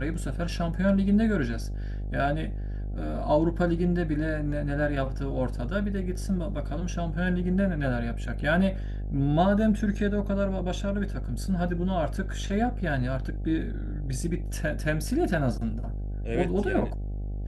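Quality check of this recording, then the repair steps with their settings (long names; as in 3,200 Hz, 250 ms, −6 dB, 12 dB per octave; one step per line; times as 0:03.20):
mains buzz 50 Hz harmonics 16 −32 dBFS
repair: hum removal 50 Hz, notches 16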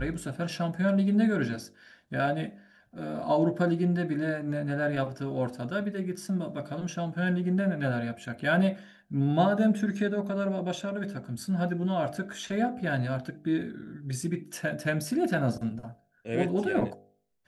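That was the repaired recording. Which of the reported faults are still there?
none of them is left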